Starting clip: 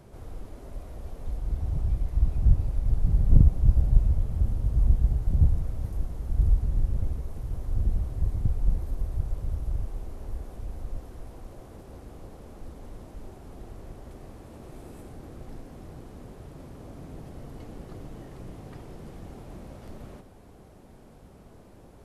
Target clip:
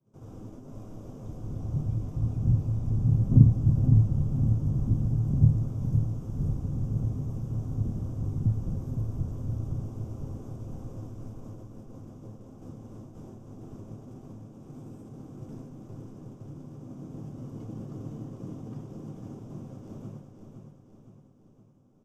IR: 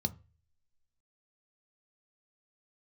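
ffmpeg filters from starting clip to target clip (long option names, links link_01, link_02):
-filter_complex "[0:a]agate=range=-33dB:threshold=-38dB:ratio=3:detection=peak,aecho=1:1:513|1026|1539|2052|2565|3078:0.473|0.246|0.128|0.0665|0.0346|0.018[link_01];[1:a]atrim=start_sample=2205,asetrate=61740,aresample=44100[link_02];[link_01][link_02]afir=irnorm=-1:irlink=0,volume=-5dB"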